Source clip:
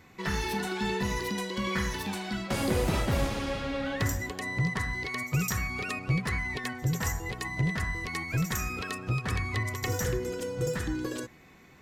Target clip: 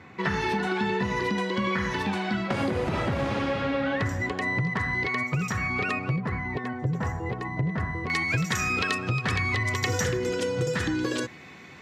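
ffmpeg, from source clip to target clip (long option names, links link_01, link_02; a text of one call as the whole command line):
ffmpeg -i in.wav -af "highpass=frequency=80:width=0.5412,highpass=frequency=80:width=1.3066,alimiter=limit=-20.5dB:level=0:latency=1:release=174,asetnsamples=nb_out_samples=441:pad=0,asendcmd='6.16 lowpass f 1000;8.1 lowpass f 3300',lowpass=1800,acompressor=threshold=-31dB:ratio=6,crystalizer=i=4:c=0,volume=7.5dB" out.wav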